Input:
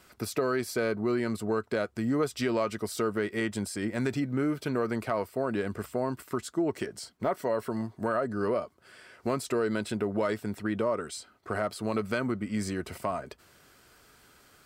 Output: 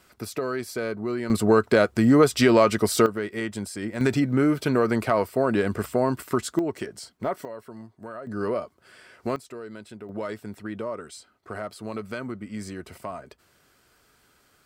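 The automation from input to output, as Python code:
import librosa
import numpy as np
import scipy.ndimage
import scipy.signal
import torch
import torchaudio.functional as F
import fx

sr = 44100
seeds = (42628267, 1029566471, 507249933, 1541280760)

y = fx.gain(x, sr, db=fx.steps((0.0, -0.5), (1.3, 11.0), (3.06, 0.5), (4.01, 7.5), (6.59, 1.0), (7.45, -9.5), (8.27, 1.5), (9.36, -10.5), (10.09, -3.5)))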